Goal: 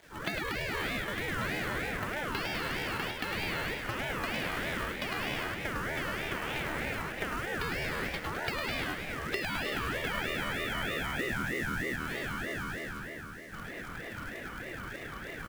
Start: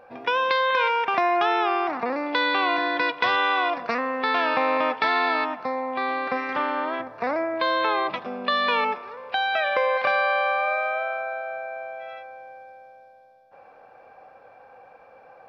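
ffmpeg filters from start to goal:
ffmpeg -i in.wav -filter_complex "[0:a]asettb=1/sr,asplit=3[link_01][link_02][link_03];[link_01]atrim=end=11.194[link_04];[link_02]atrim=start=11.19:end=11.96,asetpts=PTS-STARTPTS,afade=type=in:duration=0.004:curve=qsin,afade=type=out:start_time=0.766:duration=0.004:curve=qsin,highpass=frequency=830:width_type=q:width=4.9[link_05];[link_03]atrim=start=11.956[link_06];[link_04][link_05]acrossfade=duration=0.004:curve1=hsin:curve2=qsin[link_07];[link_07][link_06]acrossfade=duration=0.004:curve1=qsin:curve2=hsin,acrusher=bits=3:mode=log:mix=0:aa=0.000001,dynaudnorm=framelen=120:gausssize=3:maxgain=15dB,acrusher=bits=7:mix=0:aa=0.000001,acompressor=threshold=-24dB:ratio=8,asplit=8[link_08][link_09][link_10][link_11][link_12][link_13][link_14][link_15];[link_09]adelay=104,afreqshift=78,volume=-4.5dB[link_16];[link_10]adelay=208,afreqshift=156,volume=-9.9dB[link_17];[link_11]adelay=312,afreqshift=234,volume=-15.2dB[link_18];[link_12]adelay=416,afreqshift=312,volume=-20.6dB[link_19];[link_13]adelay=520,afreqshift=390,volume=-25.9dB[link_20];[link_14]adelay=624,afreqshift=468,volume=-31.3dB[link_21];[link_15]adelay=728,afreqshift=546,volume=-36.6dB[link_22];[link_08][link_16][link_17][link_18][link_19][link_20][link_21][link_22]amix=inputs=8:normalize=0,afreqshift=16,aeval=exprs='val(0)*sin(2*PI*900*n/s+900*0.35/3.2*sin(2*PI*3.2*n/s))':channel_layout=same,volume=-6dB" out.wav

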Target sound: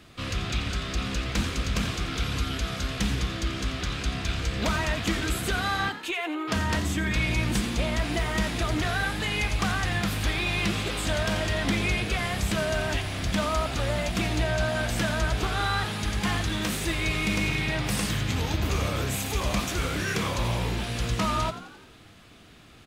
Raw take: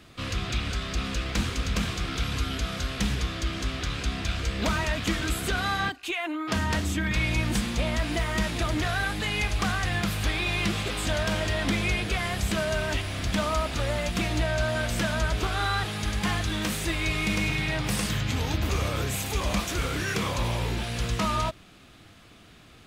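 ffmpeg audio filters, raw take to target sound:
ffmpeg -i in.wav -filter_complex "[0:a]asplit=7[link_01][link_02][link_03][link_04][link_05][link_06][link_07];[link_02]adelay=87,afreqshift=67,volume=-13.5dB[link_08];[link_03]adelay=174,afreqshift=134,volume=-18.7dB[link_09];[link_04]adelay=261,afreqshift=201,volume=-23.9dB[link_10];[link_05]adelay=348,afreqshift=268,volume=-29.1dB[link_11];[link_06]adelay=435,afreqshift=335,volume=-34.3dB[link_12];[link_07]adelay=522,afreqshift=402,volume=-39.5dB[link_13];[link_01][link_08][link_09][link_10][link_11][link_12][link_13]amix=inputs=7:normalize=0" out.wav

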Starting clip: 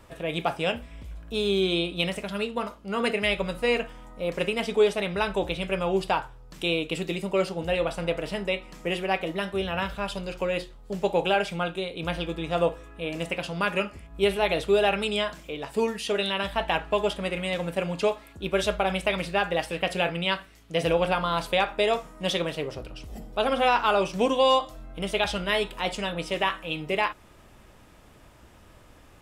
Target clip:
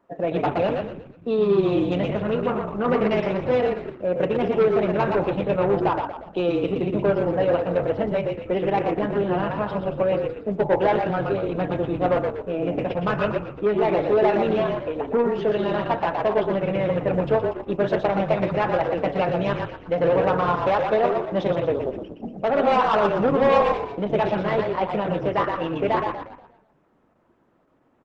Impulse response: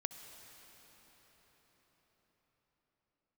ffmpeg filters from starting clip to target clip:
-filter_complex "[0:a]highpass=frequency=160:width=0.5412,highpass=frequency=160:width=1.3066,afftdn=noise_reduction=19:noise_floor=-39,lowpass=1200,asplit=2[link_01][link_02];[link_02]acompressor=threshold=-38dB:ratio=10,volume=-2.5dB[link_03];[link_01][link_03]amix=inputs=2:normalize=0,asoftclip=type=tanh:threshold=-20dB,asplit=7[link_04][link_05][link_06][link_07][link_08][link_09][link_10];[link_05]adelay=124,afreqshift=-36,volume=-4dB[link_11];[link_06]adelay=248,afreqshift=-72,volume=-11.1dB[link_12];[link_07]adelay=372,afreqshift=-108,volume=-18.3dB[link_13];[link_08]adelay=496,afreqshift=-144,volume=-25.4dB[link_14];[link_09]adelay=620,afreqshift=-180,volume=-32.5dB[link_15];[link_10]adelay=744,afreqshift=-216,volume=-39.7dB[link_16];[link_04][link_11][link_12][link_13][link_14][link_15][link_16]amix=inputs=7:normalize=0,asetrate=45938,aresample=44100,volume=6dB" -ar 48000 -c:a libopus -b:a 10k

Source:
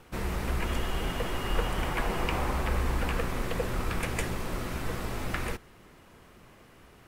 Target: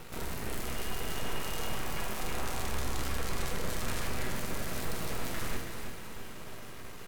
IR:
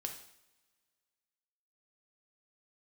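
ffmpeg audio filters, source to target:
-filter_complex "[0:a]asettb=1/sr,asplit=3[link_01][link_02][link_03];[link_01]atrim=end=2.204[link_04];[link_02]atrim=start=2.2:end=4.32,asetpts=PTS-STARTPTS,afade=type=in:duration=0.004:curve=qsin,afade=type=out:start_time=2.116:duration=0.004:curve=qsin,lowpass=2900[link_05];[link_03]atrim=start=4.316[link_06];[link_04][link_05]acrossfade=duration=0.004:curve1=hsin:curve2=qsin[link_07];[link_07][link_06]acrossfade=duration=0.004:curve1=qsin:curve2=hsin,alimiter=level_in=12dB:limit=-24dB:level=0:latency=1:release=11,volume=-12dB,acrusher=bits=7:dc=4:mix=0:aa=0.000001,asplit=2[link_08][link_09];[link_09]adelay=43,volume=-12dB[link_10];[link_08][link_10]amix=inputs=2:normalize=0,aecho=1:1:326|652|978|1304|1630|1956:0.447|0.219|0.107|0.0526|0.0258|0.0126[link_11];[1:a]atrim=start_sample=2205,asetrate=33075,aresample=44100[link_12];[link_11][link_12]afir=irnorm=-1:irlink=0,volume=9dB"

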